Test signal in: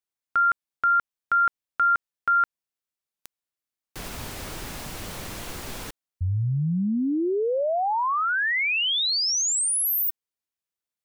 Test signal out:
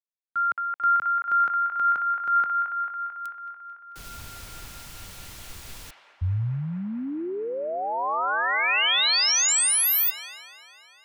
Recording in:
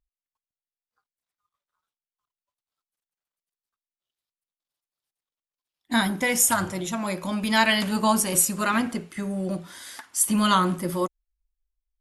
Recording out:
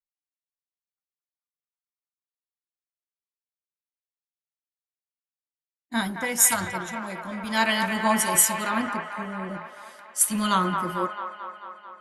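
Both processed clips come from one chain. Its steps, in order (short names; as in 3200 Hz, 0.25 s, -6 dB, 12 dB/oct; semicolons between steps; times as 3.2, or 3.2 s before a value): band-limited delay 0.221 s, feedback 80%, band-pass 1300 Hz, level -3 dB; three-band expander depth 70%; gain -4 dB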